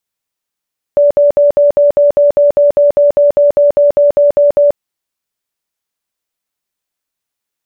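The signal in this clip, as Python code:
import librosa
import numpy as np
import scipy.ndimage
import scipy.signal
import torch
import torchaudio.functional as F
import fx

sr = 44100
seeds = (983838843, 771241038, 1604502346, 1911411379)

y = fx.tone_burst(sr, hz=579.0, cycles=79, every_s=0.2, bursts=19, level_db=-4.5)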